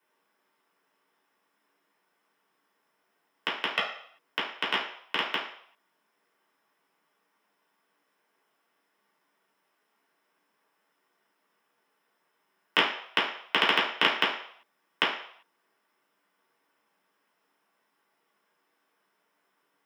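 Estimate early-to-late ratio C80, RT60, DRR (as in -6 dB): 9.0 dB, 0.65 s, -6.0 dB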